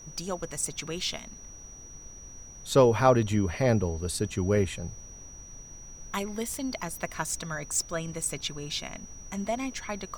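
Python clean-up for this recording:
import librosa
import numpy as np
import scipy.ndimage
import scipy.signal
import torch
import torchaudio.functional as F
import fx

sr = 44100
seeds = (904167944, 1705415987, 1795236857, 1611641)

y = fx.notch(x, sr, hz=5800.0, q=30.0)
y = fx.noise_reduce(y, sr, print_start_s=1.34, print_end_s=1.84, reduce_db=27.0)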